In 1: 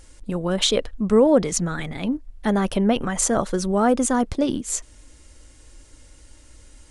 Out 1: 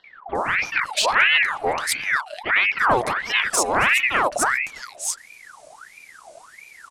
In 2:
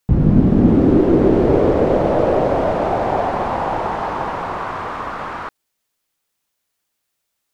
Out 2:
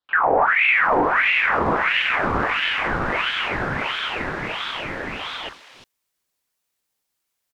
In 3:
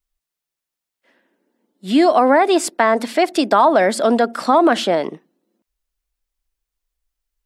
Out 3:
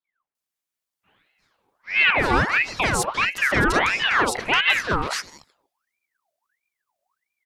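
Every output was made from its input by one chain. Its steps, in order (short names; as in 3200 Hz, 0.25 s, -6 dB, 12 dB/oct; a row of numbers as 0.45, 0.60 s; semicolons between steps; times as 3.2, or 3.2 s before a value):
octaver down 1 oct, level -3 dB; tube stage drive 11 dB, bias 0.2; three bands offset in time mids, lows, highs 40/350 ms, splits 510/2200 Hz; ring modulator with a swept carrier 1500 Hz, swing 60%, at 1.5 Hz; match loudness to -20 LUFS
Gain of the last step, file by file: +4.5, +1.0, +1.5 dB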